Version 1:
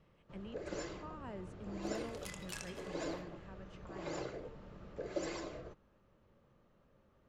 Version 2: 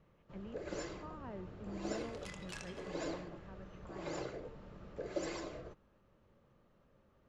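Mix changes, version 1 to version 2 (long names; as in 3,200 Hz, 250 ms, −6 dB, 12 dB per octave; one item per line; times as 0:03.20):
speech: add Gaussian smoothing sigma 3.1 samples
second sound: add high-frequency loss of the air 62 metres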